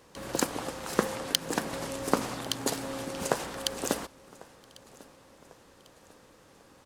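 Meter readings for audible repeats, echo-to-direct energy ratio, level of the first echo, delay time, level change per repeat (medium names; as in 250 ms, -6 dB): 2, -22.0 dB, -23.0 dB, 1097 ms, -6.5 dB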